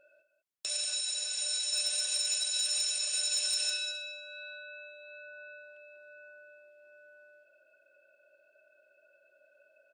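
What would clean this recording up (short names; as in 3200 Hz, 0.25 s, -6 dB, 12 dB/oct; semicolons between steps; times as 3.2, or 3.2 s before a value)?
clip repair -23 dBFS; inverse comb 0.194 s -11 dB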